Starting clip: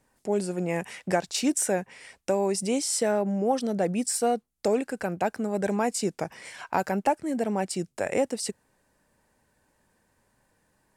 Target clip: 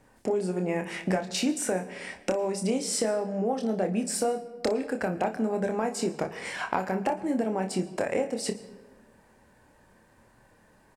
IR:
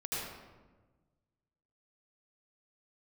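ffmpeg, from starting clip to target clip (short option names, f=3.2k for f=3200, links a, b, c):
-filter_complex "[0:a]highshelf=f=3.9k:g=-9,bandreject=f=50:t=h:w=6,bandreject=f=100:t=h:w=6,bandreject=f=150:t=h:w=6,bandreject=f=200:t=h:w=6,acompressor=threshold=-35dB:ratio=6,aecho=1:1:27|59:0.473|0.178,asplit=2[a][b];[1:a]atrim=start_sample=2205,adelay=36[c];[b][c]afir=irnorm=-1:irlink=0,volume=-19dB[d];[a][d]amix=inputs=2:normalize=0,volume=9dB"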